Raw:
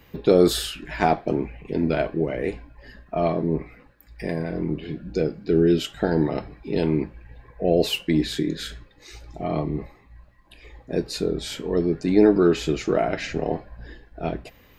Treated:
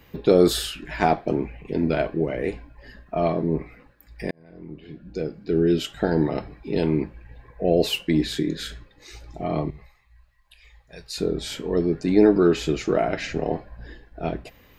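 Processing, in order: 4.31–5.94 fade in linear; 9.7–11.18 passive tone stack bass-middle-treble 10-0-10

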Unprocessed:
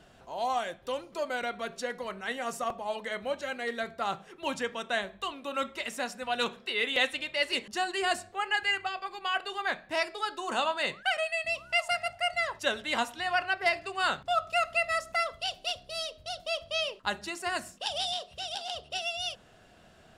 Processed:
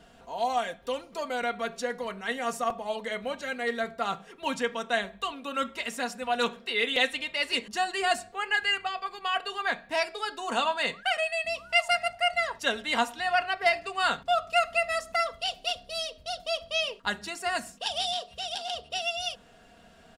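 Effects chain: comb 4.3 ms, depth 50%; gain +1 dB

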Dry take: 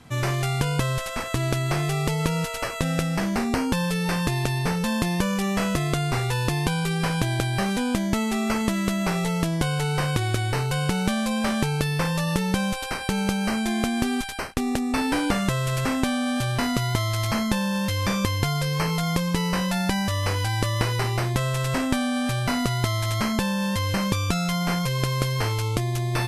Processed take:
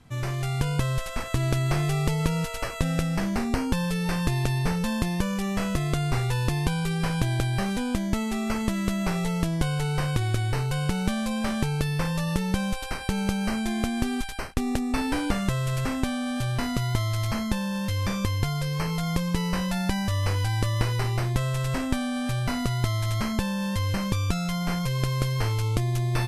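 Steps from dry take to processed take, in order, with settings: low shelf 95 Hz +11 dB; AGC; gain -8 dB

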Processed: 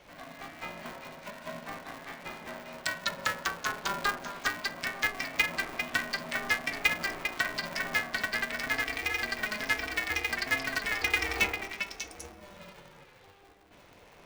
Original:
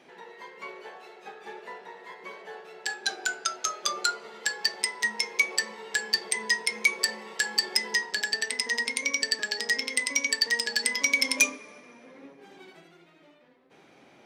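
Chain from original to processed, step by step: delay with a stepping band-pass 0.199 s, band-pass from 630 Hz, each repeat 1.4 oct, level -3 dB; treble ducked by the level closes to 2200 Hz, closed at -26.5 dBFS; polarity switched at an audio rate 200 Hz

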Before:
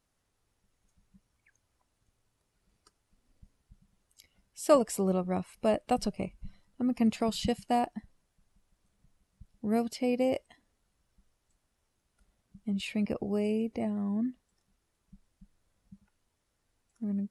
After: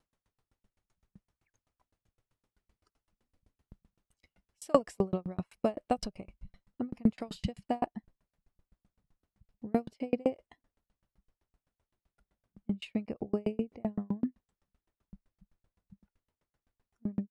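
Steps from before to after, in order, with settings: LPF 3300 Hz 6 dB/oct, from 7.48 s 1900 Hz; dB-ramp tremolo decaying 7.8 Hz, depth 39 dB; gain +6 dB

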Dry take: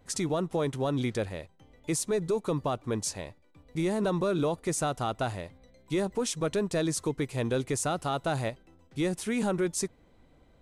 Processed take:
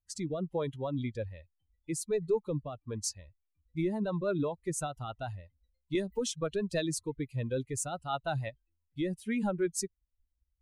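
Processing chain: per-bin expansion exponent 2; rotary speaker horn 1.2 Hz, later 6 Hz, at 2.85; 5.95–7.03 three-band squash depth 70%; gain +2 dB

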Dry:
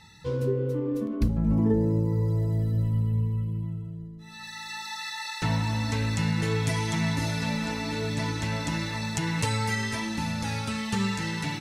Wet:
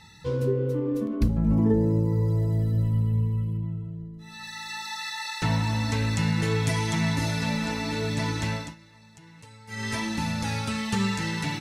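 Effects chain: 3.57–4.14 high shelf 5200 Hz -11 dB; 8.49–9.93 dip -23.5 dB, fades 0.26 s; gain +1.5 dB

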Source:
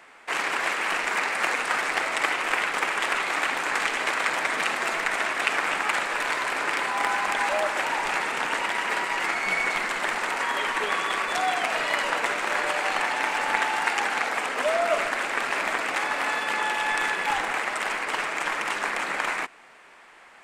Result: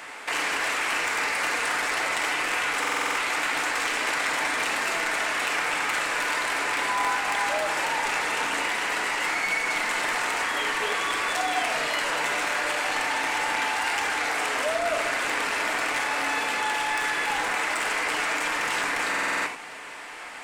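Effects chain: high shelf 2800 Hz +6.5 dB; in parallel at -1 dB: negative-ratio compressor -32 dBFS, ratio -0.5; on the sum: soft clip -17 dBFS, distortion -15 dB; reverb, pre-delay 3 ms, DRR 3.5 dB; stuck buffer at 2.8/19.09, samples 2048, times 7; gain -3.5 dB

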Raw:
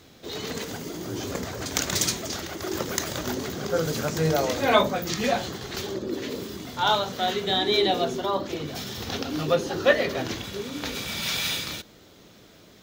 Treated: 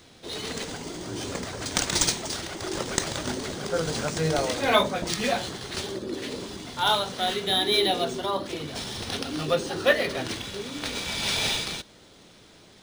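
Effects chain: high shelf 2400 Hz +8 dB; decimation joined by straight lines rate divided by 3×; gain -2.5 dB

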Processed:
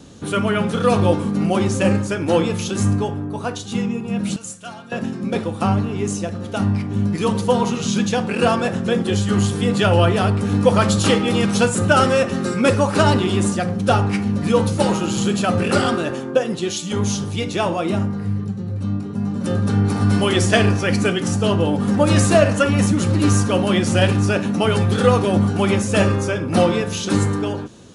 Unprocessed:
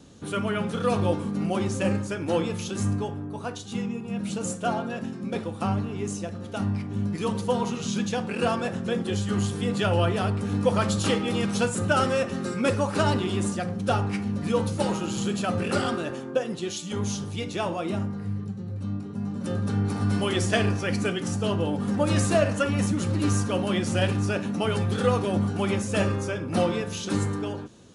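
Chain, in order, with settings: 4.36–4.92 passive tone stack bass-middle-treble 5-5-5; gain +8 dB

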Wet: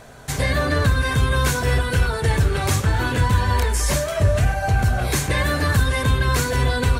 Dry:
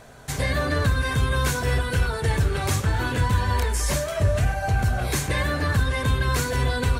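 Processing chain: 5.45–6.03 high shelf 5400 Hz -> 8100 Hz +7.5 dB; gain +3.5 dB

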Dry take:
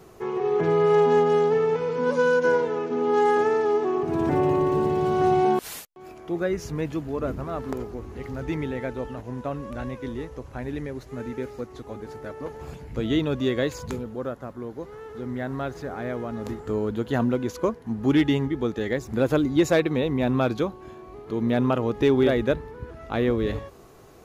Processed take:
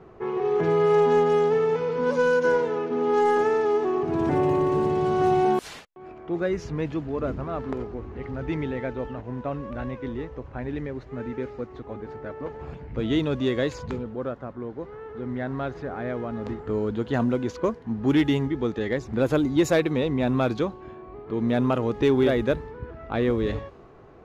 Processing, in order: low-pass opened by the level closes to 1900 Hz, open at -16.5 dBFS; in parallel at -10 dB: soft clip -26 dBFS, distortion -7 dB; on the sum: gain -1.5 dB

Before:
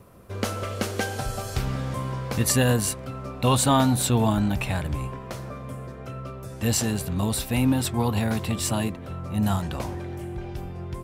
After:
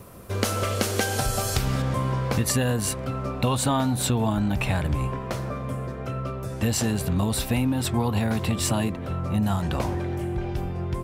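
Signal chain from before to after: high shelf 4100 Hz +6.5 dB, from 1.82 s -4 dB; compressor 10:1, threshold -25 dBFS, peak gain reduction 9.5 dB; gain +5.5 dB

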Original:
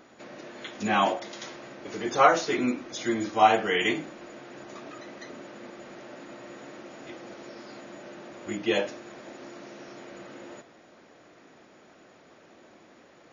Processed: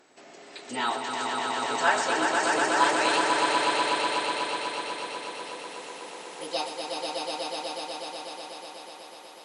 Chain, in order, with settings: speed glide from 114% -> 168%; tone controls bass -6 dB, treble +6 dB; swelling echo 0.123 s, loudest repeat 5, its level -4 dB; gain -5 dB

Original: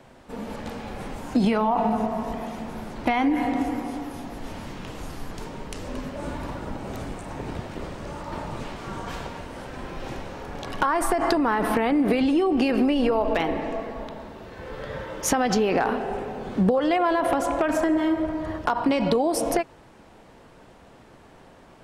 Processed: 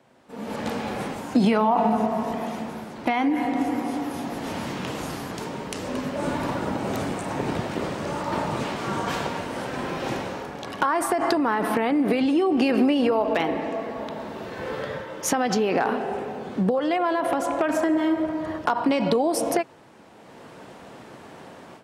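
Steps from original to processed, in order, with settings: HPF 130 Hz 12 dB/oct; AGC gain up to 15.5 dB; gain -8 dB

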